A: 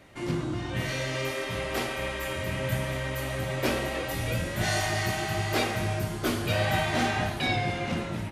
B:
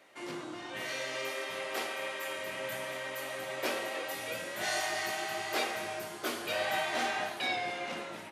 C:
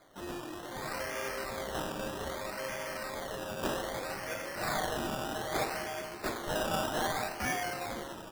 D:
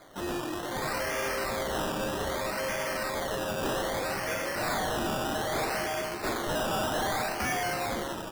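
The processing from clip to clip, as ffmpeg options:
-af "highpass=430,volume=-4dB"
-af "acrusher=samples=16:mix=1:aa=0.000001:lfo=1:lforange=9.6:lforate=0.63"
-af "volume=35.5dB,asoftclip=hard,volume=-35.5dB,volume=8dB"

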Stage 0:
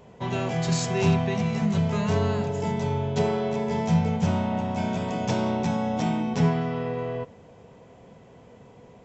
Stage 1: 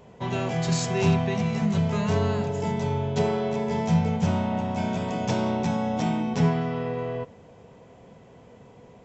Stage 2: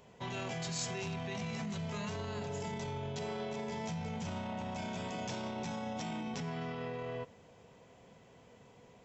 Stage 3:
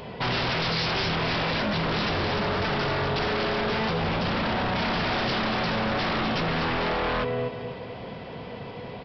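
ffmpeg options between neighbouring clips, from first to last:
-af anull
-af "alimiter=limit=-23dB:level=0:latency=1:release=15,tiltshelf=f=1.4k:g=-4.5,volume=-6dB"
-af "aecho=1:1:243|486|729|972:0.376|0.117|0.0361|0.0112,aresample=11025,aeval=exprs='0.0447*sin(PI/2*4.47*val(0)/0.0447)':c=same,aresample=44100,volume=4dB"

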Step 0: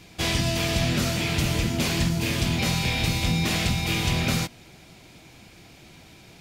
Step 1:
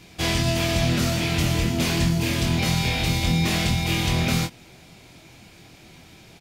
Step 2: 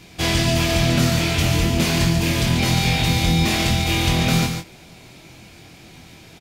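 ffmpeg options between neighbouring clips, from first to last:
-filter_complex "[0:a]asplit=2[a][b];[b]adelay=24,volume=-6dB[c];[a][c]amix=inputs=2:normalize=0"
-af "aecho=1:1:142:0.501,volume=3dB"

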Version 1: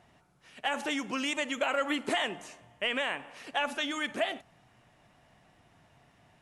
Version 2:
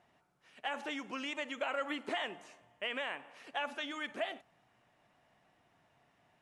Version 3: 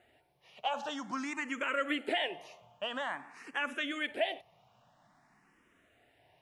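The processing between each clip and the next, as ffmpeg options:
-filter_complex "[0:a]highshelf=f=4k:g=-6,acrossover=split=6400[a][b];[b]acompressor=threshold=-59dB:ratio=4:attack=1:release=60[c];[a][c]amix=inputs=2:normalize=0,lowshelf=f=170:g=-11,volume=-5.5dB"
-filter_complex "[0:a]asplit=2[a][b];[b]afreqshift=0.5[c];[a][c]amix=inputs=2:normalize=1,volume=6.5dB"

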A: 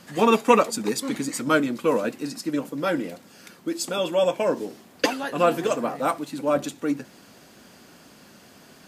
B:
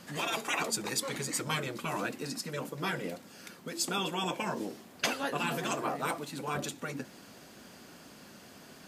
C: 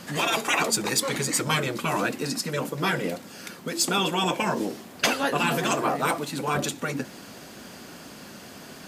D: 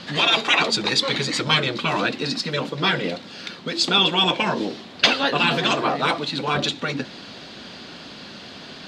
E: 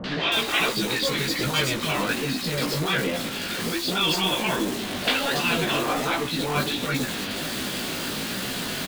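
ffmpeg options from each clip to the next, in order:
-af "afftfilt=real='re*lt(hypot(re,im),0.251)':imag='im*lt(hypot(re,im),0.251)':win_size=1024:overlap=0.75,volume=-2dB"
-af "asoftclip=type=tanh:threshold=-19.5dB,volume=9dB"
-af "lowpass=f=3.9k:t=q:w=3.2,volume=2.5dB"
-filter_complex "[0:a]aeval=exprs='val(0)+0.5*0.15*sgn(val(0))':c=same,flanger=delay=15:depth=5.6:speed=1.3,acrossover=split=860|4600[a][b][c];[b]adelay=40[d];[c]adelay=320[e];[a][d][e]amix=inputs=3:normalize=0,volume=-4dB"

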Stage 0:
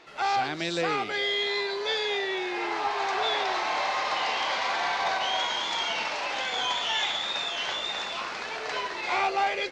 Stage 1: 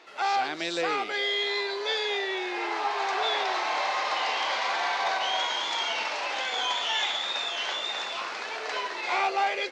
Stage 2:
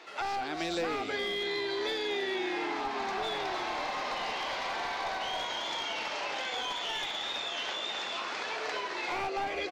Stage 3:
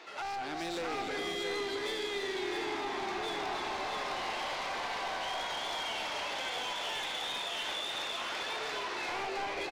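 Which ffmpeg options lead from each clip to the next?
-af "highpass=300"
-filter_complex "[0:a]aeval=exprs='clip(val(0),-1,0.0708)':c=same,asplit=5[a][b][c][d][e];[b]adelay=313,afreqshift=-71,volume=-11dB[f];[c]adelay=626,afreqshift=-142,volume=-19.9dB[g];[d]adelay=939,afreqshift=-213,volume=-28.7dB[h];[e]adelay=1252,afreqshift=-284,volume=-37.6dB[i];[a][f][g][h][i]amix=inputs=5:normalize=0,acrossover=split=380[j][k];[k]acompressor=threshold=-35dB:ratio=6[l];[j][l]amix=inputs=2:normalize=0,volume=2dB"
-af "asoftclip=type=tanh:threshold=-33.5dB,aecho=1:1:308|662:0.355|0.562"

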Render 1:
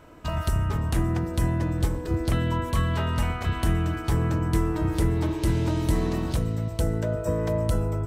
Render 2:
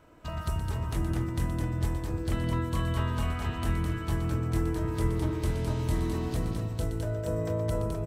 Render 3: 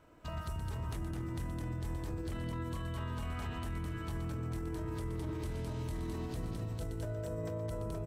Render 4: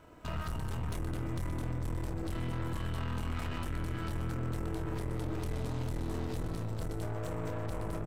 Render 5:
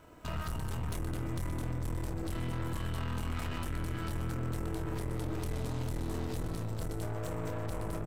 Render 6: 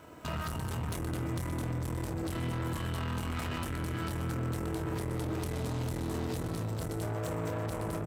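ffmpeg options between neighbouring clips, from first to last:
-filter_complex "[0:a]acrossover=split=3400[a][b];[b]volume=27dB,asoftclip=hard,volume=-27dB[c];[a][c]amix=inputs=2:normalize=0,aecho=1:1:121|210|474:0.335|0.596|0.501,volume=-7.5dB"
-af "alimiter=level_in=2.5dB:limit=-24dB:level=0:latency=1:release=35,volume=-2.5dB,volume=-4.5dB"
-filter_complex "[0:a]aeval=exprs='(tanh(141*val(0)+0.65)-tanh(0.65))/141':c=same,asplit=2[a][b];[b]adelay=25,volume=-10.5dB[c];[a][c]amix=inputs=2:normalize=0,volume=8.5dB"
-af "highshelf=f=6.3k:g=5.5"
-filter_complex "[0:a]highpass=79,asplit=2[a][b];[b]alimiter=level_in=11dB:limit=-24dB:level=0:latency=1,volume=-11dB,volume=-2dB[c];[a][c]amix=inputs=2:normalize=0"

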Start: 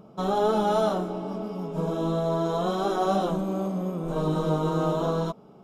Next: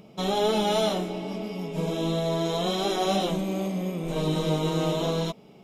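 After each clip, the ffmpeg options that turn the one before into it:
-af "highshelf=f=1.7k:t=q:w=3:g=7.5"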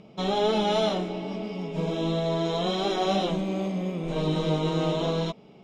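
-af "lowpass=5.1k"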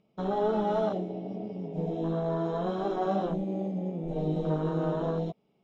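-af "afwtdn=0.0447,volume=-3dB"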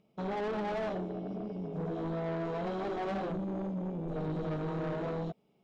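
-af "asoftclip=type=tanh:threshold=-31.5dB"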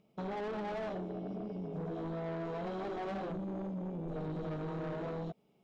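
-af "acompressor=threshold=-37dB:ratio=6"

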